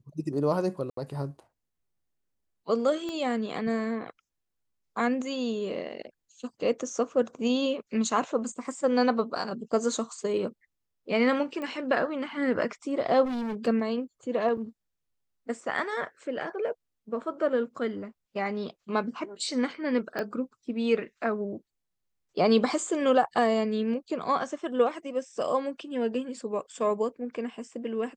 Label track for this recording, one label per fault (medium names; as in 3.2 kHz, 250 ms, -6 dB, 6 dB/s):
0.900000	0.970000	dropout 73 ms
3.090000	3.090000	pop -23 dBFS
11.620000	11.620000	pop -24 dBFS
13.240000	13.680000	clipped -29 dBFS
14.570000	14.580000	dropout 5.6 ms
20.190000	20.190000	pop -19 dBFS